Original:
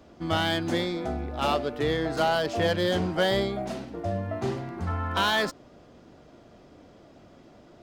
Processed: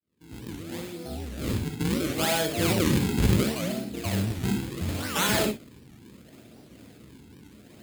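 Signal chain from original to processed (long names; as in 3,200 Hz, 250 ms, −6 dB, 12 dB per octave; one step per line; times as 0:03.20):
fade in at the beginning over 2.56 s
sample-and-hold swept by an LFO 42×, swing 160% 0.72 Hz
high-pass filter 71 Hz
parametric band 880 Hz −10 dB 2 octaves
notch filter 5,700 Hz, Q 9.4
reverb whose tail is shaped and stops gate 80 ms rising, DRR 3.5 dB
wow of a warped record 78 rpm, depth 250 cents
level +3.5 dB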